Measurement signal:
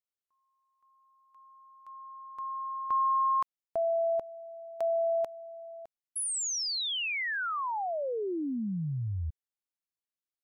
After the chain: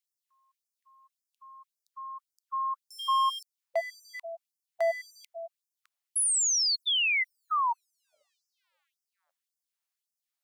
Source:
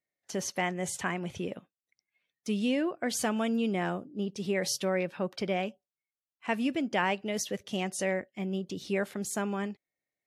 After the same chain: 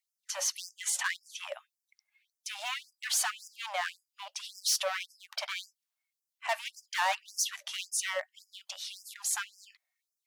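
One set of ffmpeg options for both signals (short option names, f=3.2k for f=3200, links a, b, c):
-af "asoftclip=type=hard:threshold=-29.5dB,afftfilt=real='re*gte(b*sr/1024,540*pow(4900/540,0.5+0.5*sin(2*PI*1.8*pts/sr)))':imag='im*gte(b*sr/1024,540*pow(4900/540,0.5+0.5*sin(2*PI*1.8*pts/sr)))':win_size=1024:overlap=0.75,volume=6.5dB"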